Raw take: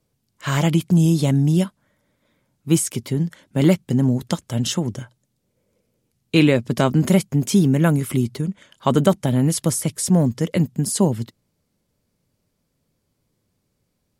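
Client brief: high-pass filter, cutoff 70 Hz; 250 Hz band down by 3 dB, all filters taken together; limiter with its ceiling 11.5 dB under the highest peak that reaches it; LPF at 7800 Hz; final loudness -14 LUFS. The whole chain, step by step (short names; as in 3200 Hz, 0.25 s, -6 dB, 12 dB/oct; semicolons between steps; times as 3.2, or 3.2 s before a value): HPF 70 Hz; LPF 7800 Hz; bell 250 Hz -4.5 dB; gain +10.5 dB; limiter -3 dBFS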